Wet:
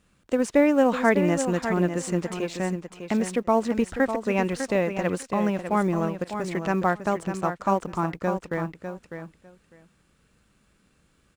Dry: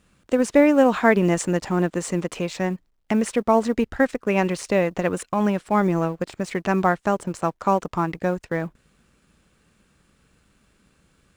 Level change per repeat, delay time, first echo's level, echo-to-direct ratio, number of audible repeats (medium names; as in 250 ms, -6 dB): -16.5 dB, 601 ms, -8.5 dB, -8.5 dB, 2